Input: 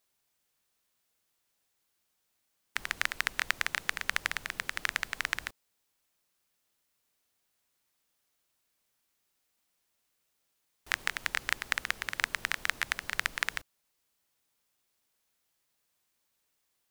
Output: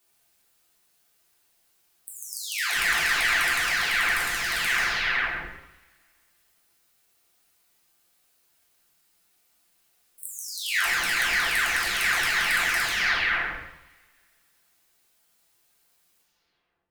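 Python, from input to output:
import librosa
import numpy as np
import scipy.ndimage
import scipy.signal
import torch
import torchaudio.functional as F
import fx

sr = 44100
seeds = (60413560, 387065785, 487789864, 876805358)

y = fx.spec_delay(x, sr, highs='early', ms=684)
y = fx.rev_double_slope(y, sr, seeds[0], early_s=0.77, late_s=2.2, knee_db=-23, drr_db=-2.5)
y = y * librosa.db_to_amplitude(7.5)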